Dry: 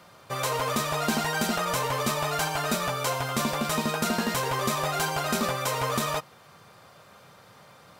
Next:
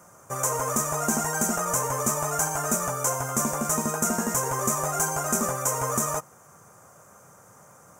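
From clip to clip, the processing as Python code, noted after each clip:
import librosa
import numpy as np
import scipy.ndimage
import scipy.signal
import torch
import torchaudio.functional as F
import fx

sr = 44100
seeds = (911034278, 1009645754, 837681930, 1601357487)

y = fx.curve_eq(x, sr, hz=(1400.0, 4200.0, 6400.0, 12000.0), db=(0, -22, 12, 5))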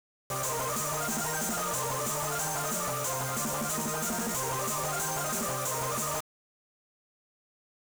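y = 10.0 ** (-27.0 / 20.0) * np.tanh(x / 10.0 ** (-27.0 / 20.0))
y = fx.quant_dither(y, sr, seeds[0], bits=6, dither='none')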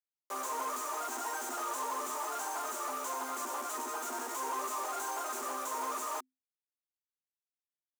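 y = scipy.signal.sosfilt(scipy.signal.cheby1(6, 9, 250.0, 'highpass', fs=sr, output='sos'), x)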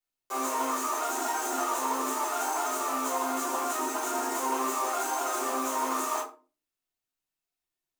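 y = fx.room_shoebox(x, sr, seeds[1], volume_m3=170.0, walls='furnished', distance_m=3.4)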